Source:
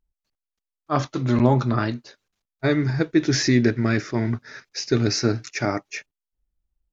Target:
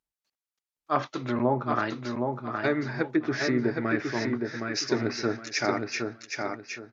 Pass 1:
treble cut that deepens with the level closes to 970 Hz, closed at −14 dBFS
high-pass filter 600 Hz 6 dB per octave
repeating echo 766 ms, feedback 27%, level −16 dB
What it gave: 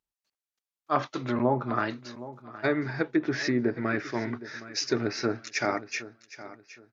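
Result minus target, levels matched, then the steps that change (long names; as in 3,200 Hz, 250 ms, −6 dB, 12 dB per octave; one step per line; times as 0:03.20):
echo-to-direct −11.5 dB
change: repeating echo 766 ms, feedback 27%, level −4.5 dB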